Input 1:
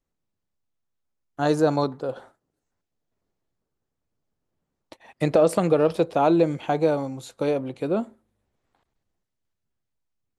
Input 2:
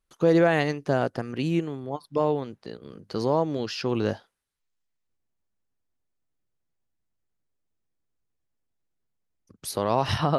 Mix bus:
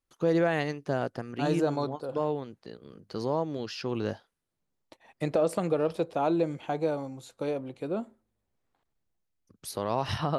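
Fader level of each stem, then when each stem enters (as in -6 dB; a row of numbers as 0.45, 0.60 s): -7.5, -5.5 dB; 0.00, 0.00 s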